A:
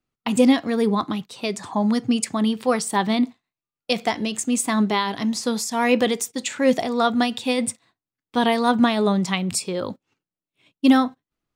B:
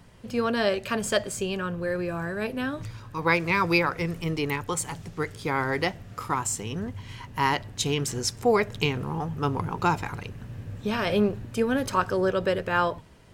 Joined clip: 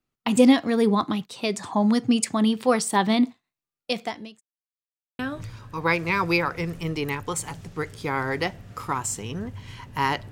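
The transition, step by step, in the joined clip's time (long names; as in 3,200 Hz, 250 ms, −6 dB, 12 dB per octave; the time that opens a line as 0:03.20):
A
0:03.60–0:04.41: fade out linear
0:04.41–0:05.19: silence
0:05.19: continue with B from 0:02.60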